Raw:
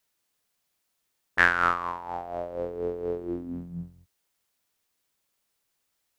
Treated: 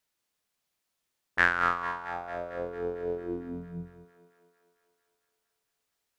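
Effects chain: treble shelf 8.9 kHz -4.5 dB; thinning echo 225 ms, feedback 70%, high-pass 320 Hz, level -13 dB; trim -3 dB

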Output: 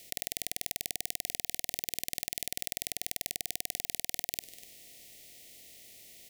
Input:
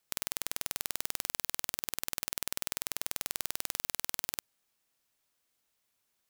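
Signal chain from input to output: spectral levelling over time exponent 0.4; Chebyshev band-stop 730–1900 Hz, order 4; delay 246 ms -17 dB

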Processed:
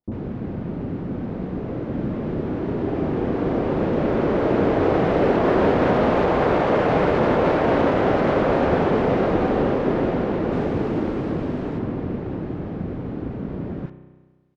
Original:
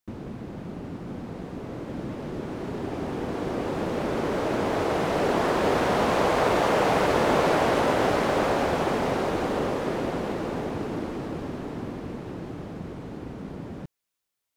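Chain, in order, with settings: peak limiter -15.5 dBFS, peak gain reduction 5.5 dB; tape spacing loss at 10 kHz 31 dB, from 10.47 s at 10 kHz 22 dB, from 11.73 s at 10 kHz 33 dB; bands offset in time lows, highs 40 ms, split 920 Hz; spring tank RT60 1.4 s, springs 32 ms, chirp 45 ms, DRR 10.5 dB; trim +8.5 dB

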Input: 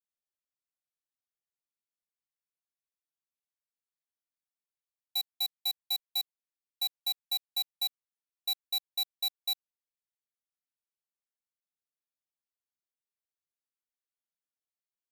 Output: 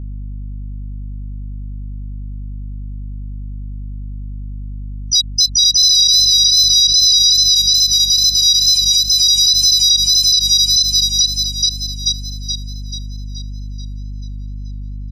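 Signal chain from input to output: backward echo that repeats 216 ms, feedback 79%, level -1 dB; level rider gain up to 5 dB; speakerphone echo 280 ms, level -23 dB; compression 8:1, threshold -33 dBFS, peak gain reduction 13 dB; harmony voices +4 st -2 dB, +7 st -5 dB; frequency weighting ITU-R 468; wow and flutter 38 cents; tilt shelf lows -3 dB; hum 50 Hz, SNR 13 dB; loudness maximiser +16.5 dB; spectral contrast expander 1.5:1; trim -1 dB

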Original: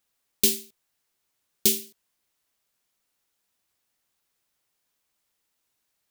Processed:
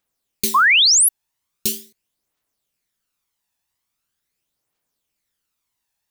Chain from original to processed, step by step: phaser 0.42 Hz, delay 1.2 ms, feedback 48%; painted sound rise, 0.54–1.09 s, 990–12000 Hz -11 dBFS; trim -2 dB

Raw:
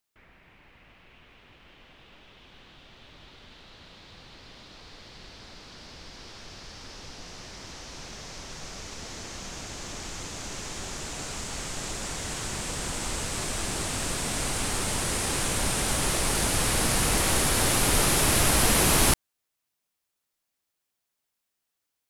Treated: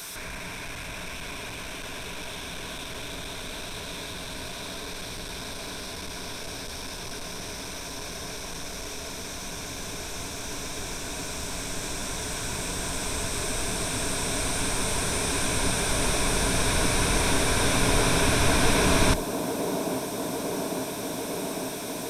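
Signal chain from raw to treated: one-bit delta coder 64 kbps, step -31.5 dBFS; rippled EQ curve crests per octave 1.6, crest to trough 8 dB; feedback echo behind a band-pass 850 ms, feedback 81%, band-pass 400 Hz, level -4 dB

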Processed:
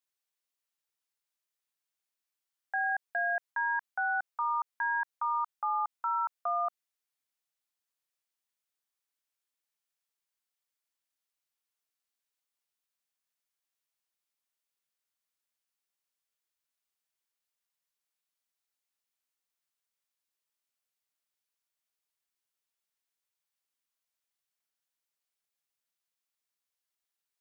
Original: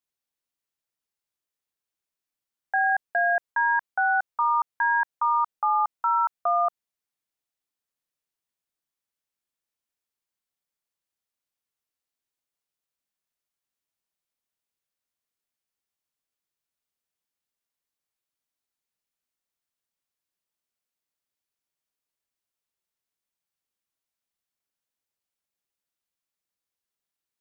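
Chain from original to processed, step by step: bass shelf 460 Hz -12 dB; peak limiter -24 dBFS, peak gain reduction 6.5 dB

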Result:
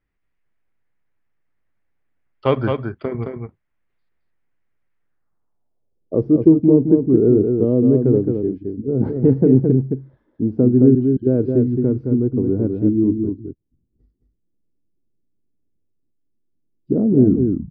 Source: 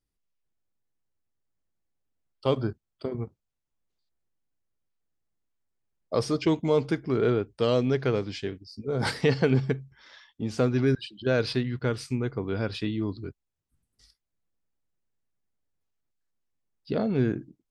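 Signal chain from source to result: tape stop on the ending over 0.47 s; delay 217 ms -5 dB; low-pass sweep 2 kHz -> 320 Hz, 5.02–6.23 s; trim +7 dB

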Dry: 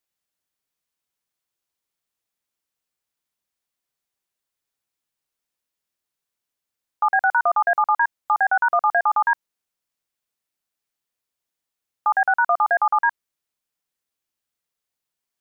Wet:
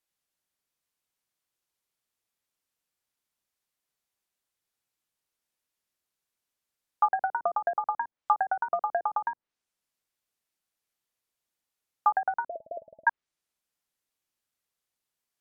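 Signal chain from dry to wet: 12.46–13.07 s: Chebyshev low-pass 660 Hz, order 10; low-pass that closes with the level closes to 340 Hz, closed at -14 dBFS; trim -1 dB

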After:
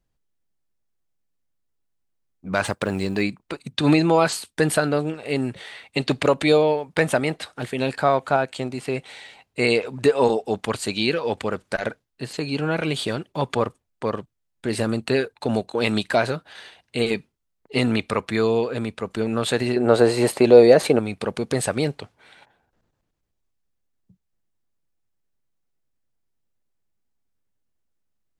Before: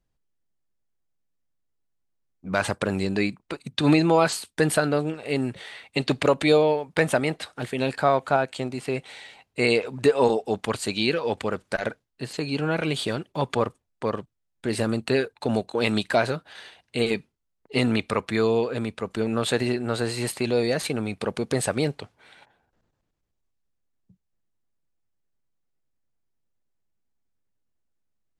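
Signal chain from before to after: 2.66–3.22 s: companding laws mixed up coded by A; 19.76–20.99 s: peaking EQ 530 Hz +12 dB 2.2 oct; trim +1.5 dB

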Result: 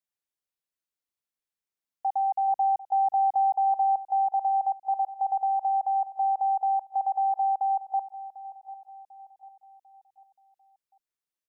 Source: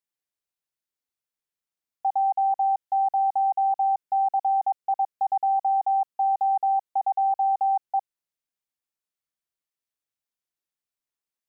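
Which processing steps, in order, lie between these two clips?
2.48–4.03 s: bass shelf 500 Hz +6.5 dB; feedback delay 746 ms, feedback 45%, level -16.5 dB; trim -3 dB

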